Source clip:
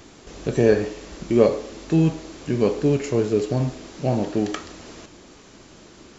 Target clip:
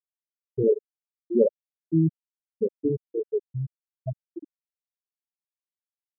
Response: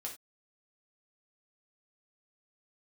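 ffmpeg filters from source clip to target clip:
-af "aeval=exprs='sgn(val(0))*max(abs(val(0))-0.0133,0)':c=same,afftfilt=real='re*gte(hypot(re,im),0.794)':imag='im*gte(hypot(re,im),0.794)':win_size=1024:overlap=0.75,volume=0.75"

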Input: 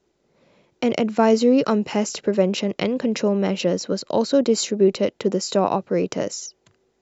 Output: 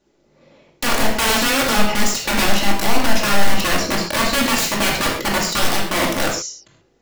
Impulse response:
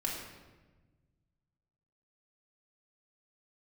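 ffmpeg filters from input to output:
-filter_complex "[0:a]asettb=1/sr,asplit=3[s0][s1][s2];[s0]atrim=end=2.064[s3];[s1]atrim=start=2.06:end=2.48,asetpts=PTS-STARTPTS,afade=t=in:d=0.004:c=qsin,afade=t=out:st=0.416:d=0.004:c=qsin,bass=f=250:g=4,treble=f=4000:g=4[s4];[s2]atrim=start=2.476[s5];[s3][s4]acrossfade=d=0.004:c1=hsin:c2=qsin[s6];[s6][s5]acrossfade=d=0.004:c1=qsin:c2=hsin,aeval=exprs='(mod(7.94*val(0)+1,2)-1)/7.94':c=same[s7];[1:a]atrim=start_sample=2205,afade=t=out:st=0.19:d=0.01,atrim=end_sample=8820[s8];[s7][s8]afir=irnorm=-1:irlink=0,volume=1.5"

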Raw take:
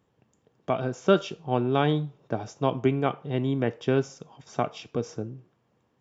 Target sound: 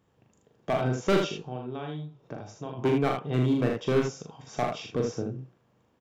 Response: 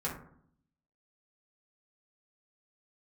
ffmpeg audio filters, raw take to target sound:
-filter_complex "[0:a]asplit=3[s0][s1][s2];[s0]afade=t=out:st=1.44:d=0.02[s3];[s1]acompressor=threshold=0.01:ratio=3,afade=t=in:st=1.44:d=0.02,afade=t=out:st=2.77:d=0.02[s4];[s2]afade=t=in:st=2.77:d=0.02[s5];[s3][s4][s5]amix=inputs=3:normalize=0,asoftclip=type=hard:threshold=0.106,aecho=1:1:40|78:0.631|0.562"

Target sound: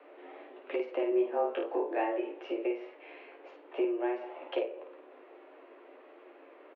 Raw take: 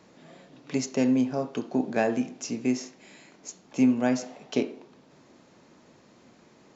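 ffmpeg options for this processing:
-filter_complex "[0:a]equalizer=f=460:w=6.2:g=6.5,acompressor=threshold=0.0251:ratio=4,asettb=1/sr,asplit=3[s0][s1][s2];[s0]atrim=end=1.094[s3];[s1]atrim=start=1.09:end=2.33,asetpts=PTS-STARTPTS,afade=t=in:d=0.004:c=qsin,afade=t=out:st=1.236:d=0.004:c=qsin,asplit=2[s4][s5];[s5]adelay=22,volume=0.75[s6];[s4][s6]amix=inputs=2:normalize=0,atrim=end_sample=54684[s7];[s2]atrim=start=2.326[s8];[s3][s7]acrossfade=d=0.004:c1=hsin:c2=qsin[s9];[s9][s8]acrossfade=d=0.004:c1=qsin:c2=hsin,aecho=1:1:12|53:0.562|0.562,highpass=f=190:t=q:w=0.5412,highpass=f=190:t=q:w=1.307,lowpass=f=2800:t=q:w=0.5176,lowpass=f=2800:t=q:w=0.7071,lowpass=f=2800:t=q:w=1.932,afreqshift=110"

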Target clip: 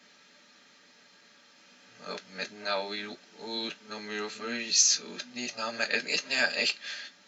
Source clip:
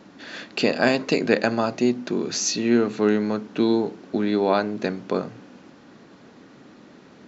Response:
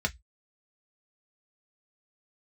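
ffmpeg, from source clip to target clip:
-filter_complex "[0:a]areverse,aderivative[s0];[1:a]atrim=start_sample=2205,asetrate=40131,aresample=44100[s1];[s0][s1]afir=irnorm=-1:irlink=0"

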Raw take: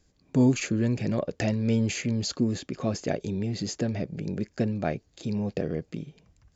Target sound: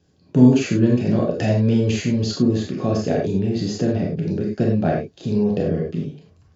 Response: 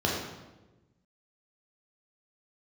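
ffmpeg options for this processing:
-filter_complex "[0:a]lowshelf=f=93:g=-10[s0];[1:a]atrim=start_sample=2205,afade=t=out:st=0.16:d=0.01,atrim=end_sample=7497[s1];[s0][s1]afir=irnorm=-1:irlink=0,volume=0.562"

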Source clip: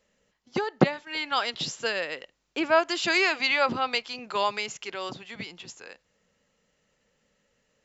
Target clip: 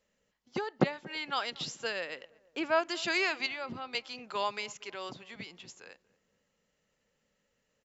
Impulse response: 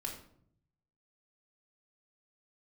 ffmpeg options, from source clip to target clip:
-filter_complex "[0:a]asettb=1/sr,asplit=3[s0][s1][s2];[s0]atrim=end=3.464[s3];[s1]atrim=start=3.46:end=3.95,asetpts=PTS-STARTPTS,afade=t=in:d=0.004:c=qsin,afade=t=out:st=0.486:d=0.004:c=qsin,acrossover=split=230[s4][s5];[s5]acompressor=threshold=0.0141:ratio=2[s6];[s4][s6]amix=inputs=2:normalize=0[s7];[s2]atrim=start=3.946[s8];[s3][s7]acrossfade=d=0.004:c1=hsin:c2=qsin[s9];[s9][s8]acrossfade=d=0.004:c1=qsin:c2=hsin,asplit=2[s10][s11];[s11]adelay=233,lowpass=f=1000:p=1,volume=0.0891,asplit=2[s12][s13];[s13]adelay=233,lowpass=f=1000:p=1,volume=0.53,asplit=2[s14][s15];[s15]adelay=233,lowpass=f=1000:p=1,volume=0.53,asplit=2[s16][s17];[s17]adelay=233,lowpass=f=1000:p=1,volume=0.53[s18];[s10][s12][s14][s16][s18]amix=inputs=5:normalize=0,volume=0.473"

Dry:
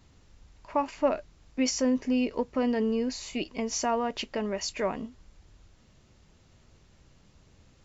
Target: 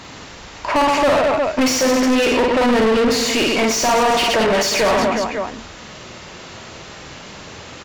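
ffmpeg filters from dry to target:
-filter_complex "[0:a]aecho=1:1:50|120|218|355.2|547.3:0.631|0.398|0.251|0.158|0.1,asplit=2[s0][s1];[s1]highpass=f=720:p=1,volume=50.1,asoftclip=type=tanh:threshold=0.266[s2];[s0][s2]amix=inputs=2:normalize=0,lowpass=f=3400:p=1,volume=0.501,volume=1.41"

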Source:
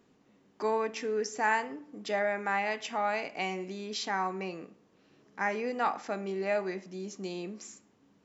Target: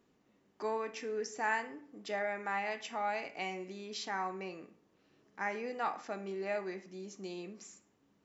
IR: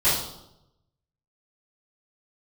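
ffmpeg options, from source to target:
-filter_complex "[0:a]asplit=2[s0][s1];[s1]equalizer=f=2100:t=o:w=0.77:g=6.5[s2];[1:a]atrim=start_sample=2205,asetrate=79380,aresample=44100[s3];[s2][s3]afir=irnorm=-1:irlink=0,volume=0.0631[s4];[s0][s4]amix=inputs=2:normalize=0,volume=0.501"

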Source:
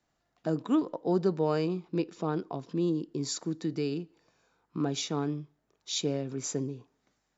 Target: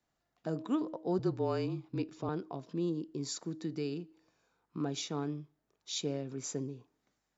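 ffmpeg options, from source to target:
-filter_complex "[0:a]asettb=1/sr,asplit=3[s0][s1][s2];[s0]atrim=end=1.194[s3];[s1]atrim=start=1.19:end=2.29,asetpts=PTS-STARTPTS,afade=t=in:d=0.004:c=qsin,afade=t=out:st=1.096:d=0.004:c=qsin,afreqshift=-33[s4];[s2]atrim=start=2.286[s5];[s3][s4]acrossfade=d=0.004:c1=hsin:c2=qsin[s6];[s6][s5]acrossfade=d=0.004:c1=qsin:c2=hsin,bandreject=f=317.2:t=h:w=4,bandreject=f=634.4:t=h:w=4,volume=0.562"

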